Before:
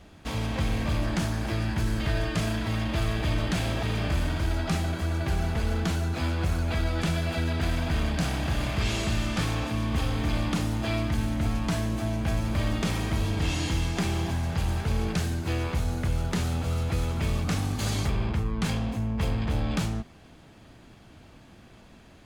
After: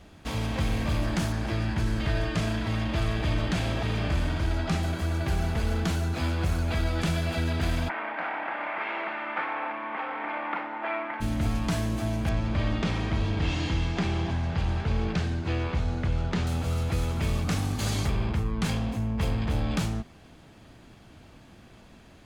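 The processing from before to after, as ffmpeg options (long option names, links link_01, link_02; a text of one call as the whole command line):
ffmpeg -i in.wav -filter_complex "[0:a]asettb=1/sr,asplit=3[link_01][link_02][link_03];[link_01]atrim=end=1.324[link_04];[link_02]atrim=start=1.32:end=4.83,asetpts=PTS-STARTPTS,afade=type=in:duration=0.004:curve=qsin,afade=type=out:start_time=3.506:duration=0.004:curve=qsin,highshelf=frequency=10000:gain=-11.5[link_05];[link_03]atrim=start=4.826[link_06];[link_04][link_05]acrossfade=duration=0.004:curve1=hsin:curve2=qsin[link_07];[link_07][link_06]acrossfade=duration=0.004:curve1=qsin:curve2=hsin,asplit=3[link_08][link_09][link_10];[link_08]afade=type=out:start_time=7.88:duration=0.02[link_11];[link_09]highpass=frequency=360:width=0.5412,highpass=frequency=360:width=1.3066,equalizer=frequency=420:width_type=q:width=4:gain=-8,equalizer=frequency=890:width_type=q:width=4:gain=9,equalizer=frequency=1400:width_type=q:width=4:gain=6,equalizer=frequency=2100:width_type=q:width=4:gain=7,lowpass=frequency=2300:width=0.5412,lowpass=frequency=2300:width=1.3066,afade=type=in:start_time=7.88:duration=0.02,afade=type=out:start_time=11.2:duration=0.02[link_12];[link_10]afade=type=in:start_time=11.2:duration=0.02[link_13];[link_11][link_12][link_13]amix=inputs=3:normalize=0,asettb=1/sr,asplit=3[link_14][link_15][link_16];[link_14]atrim=end=12.294[link_17];[link_15]atrim=start=12.29:end=16.47,asetpts=PTS-STARTPTS,afade=type=in:duration=0.004:curve=qsin,afade=type=out:start_time=4.176:duration=0.004:curve=qsin,lowpass=4300[link_18];[link_16]atrim=start=16.466[link_19];[link_17][link_18]acrossfade=duration=0.004:curve1=hsin:curve2=qsin[link_20];[link_20][link_19]acrossfade=duration=0.004:curve1=qsin:curve2=hsin" out.wav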